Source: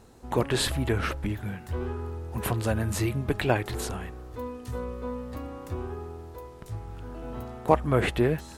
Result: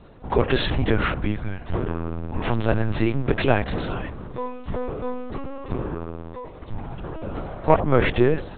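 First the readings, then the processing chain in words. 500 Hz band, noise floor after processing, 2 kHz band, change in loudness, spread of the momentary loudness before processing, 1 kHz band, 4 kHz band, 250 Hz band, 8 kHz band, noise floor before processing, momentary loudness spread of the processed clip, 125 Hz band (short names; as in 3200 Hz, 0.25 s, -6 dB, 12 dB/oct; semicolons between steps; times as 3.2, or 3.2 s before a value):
+5.5 dB, -40 dBFS, +5.5 dB, +4.5 dB, 15 LU, +5.0 dB, +2.0 dB, +5.5 dB, under -40 dB, -45 dBFS, 14 LU, +3.5 dB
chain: in parallel at -3.5 dB: soft clip -15.5 dBFS, distortion -14 dB; on the sum: band-limited delay 88 ms, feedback 38%, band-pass 510 Hz, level -14 dB; LPC vocoder at 8 kHz pitch kept; gain +2 dB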